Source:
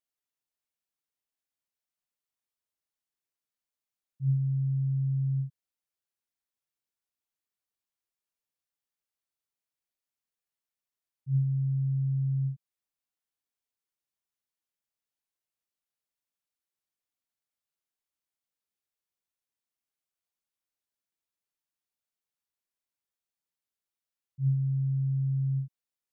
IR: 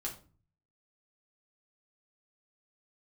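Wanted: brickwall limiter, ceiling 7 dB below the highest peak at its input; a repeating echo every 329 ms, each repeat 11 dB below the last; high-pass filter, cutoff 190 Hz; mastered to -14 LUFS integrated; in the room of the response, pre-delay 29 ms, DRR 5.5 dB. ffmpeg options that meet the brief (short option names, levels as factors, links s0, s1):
-filter_complex "[0:a]highpass=190,alimiter=level_in=3.16:limit=0.0631:level=0:latency=1,volume=0.316,aecho=1:1:329|658|987:0.282|0.0789|0.0221,asplit=2[s0][s1];[1:a]atrim=start_sample=2205,adelay=29[s2];[s1][s2]afir=irnorm=-1:irlink=0,volume=0.531[s3];[s0][s3]amix=inputs=2:normalize=0,volume=12.6"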